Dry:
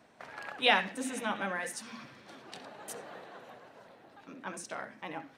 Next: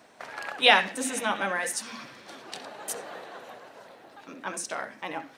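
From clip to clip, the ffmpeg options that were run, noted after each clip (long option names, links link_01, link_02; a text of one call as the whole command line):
ffmpeg -i in.wav -af "bass=frequency=250:gain=-7,treble=frequency=4000:gain=4,volume=6.5dB" out.wav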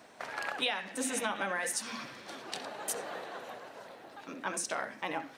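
ffmpeg -i in.wav -af "acompressor=threshold=-29dB:ratio=16" out.wav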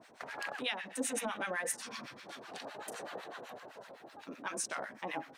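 ffmpeg -i in.wav -filter_complex "[0:a]acrossover=split=960[link_01][link_02];[link_01]aeval=exprs='val(0)*(1-1/2+1/2*cos(2*PI*7.9*n/s))':channel_layout=same[link_03];[link_02]aeval=exprs='val(0)*(1-1/2-1/2*cos(2*PI*7.9*n/s))':channel_layout=same[link_04];[link_03][link_04]amix=inputs=2:normalize=0,volume=1.5dB" out.wav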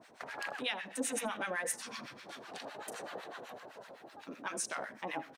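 ffmpeg -i in.wav -af "aecho=1:1:80:0.0708" out.wav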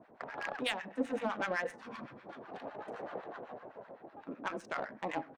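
ffmpeg -i in.wav -af "adynamicsmooth=sensitivity=3.5:basefreq=1100,volume=3.5dB" out.wav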